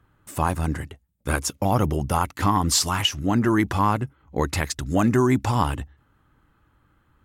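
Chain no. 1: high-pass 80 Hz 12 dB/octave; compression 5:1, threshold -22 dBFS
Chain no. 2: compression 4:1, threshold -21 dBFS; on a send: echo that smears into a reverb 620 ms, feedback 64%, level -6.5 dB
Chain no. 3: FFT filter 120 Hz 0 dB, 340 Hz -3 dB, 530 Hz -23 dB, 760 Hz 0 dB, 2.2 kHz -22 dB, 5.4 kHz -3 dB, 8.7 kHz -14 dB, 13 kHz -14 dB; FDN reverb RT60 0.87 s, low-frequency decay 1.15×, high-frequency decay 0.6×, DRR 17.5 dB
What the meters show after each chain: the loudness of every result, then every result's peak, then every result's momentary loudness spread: -28.0 LUFS, -26.5 LUFS, -26.5 LUFS; -10.5 dBFS, -10.5 dBFS, -11.5 dBFS; 9 LU, 10 LU, 10 LU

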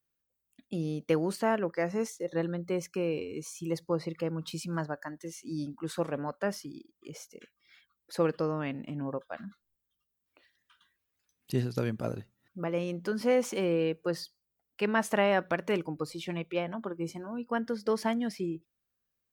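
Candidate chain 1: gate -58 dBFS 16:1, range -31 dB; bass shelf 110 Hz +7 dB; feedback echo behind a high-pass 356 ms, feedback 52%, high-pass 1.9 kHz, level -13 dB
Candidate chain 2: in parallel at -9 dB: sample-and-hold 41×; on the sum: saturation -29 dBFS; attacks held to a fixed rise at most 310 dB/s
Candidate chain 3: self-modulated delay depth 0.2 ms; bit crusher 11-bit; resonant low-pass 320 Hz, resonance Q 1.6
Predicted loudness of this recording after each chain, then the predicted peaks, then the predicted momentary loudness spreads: -32.0 LUFS, -37.5 LUFS, -33.0 LUFS; -12.5 dBFS, -29.0 dBFS, -15.0 dBFS; 14 LU, 11 LU, 11 LU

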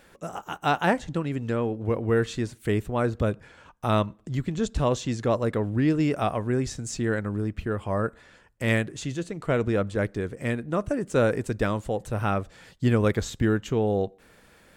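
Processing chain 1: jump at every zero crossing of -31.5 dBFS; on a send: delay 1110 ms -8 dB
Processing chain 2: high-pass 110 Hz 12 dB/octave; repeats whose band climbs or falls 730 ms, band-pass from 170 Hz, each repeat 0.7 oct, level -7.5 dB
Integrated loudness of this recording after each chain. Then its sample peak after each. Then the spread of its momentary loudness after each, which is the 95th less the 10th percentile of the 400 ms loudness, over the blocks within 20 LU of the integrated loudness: -25.0 LUFS, -27.0 LUFS; -9.5 dBFS, -9.0 dBFS; 6 LU, 8 LU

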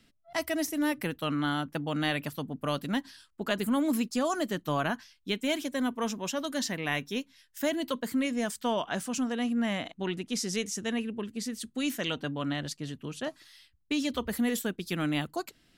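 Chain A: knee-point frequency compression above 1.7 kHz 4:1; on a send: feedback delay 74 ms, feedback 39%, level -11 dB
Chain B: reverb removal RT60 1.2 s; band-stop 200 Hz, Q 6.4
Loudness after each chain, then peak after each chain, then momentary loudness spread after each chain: -30.5 LUFS, -33.5 LUFS; -14.0 dBFS, -13.5 dBFS; 7 LU, 7 LU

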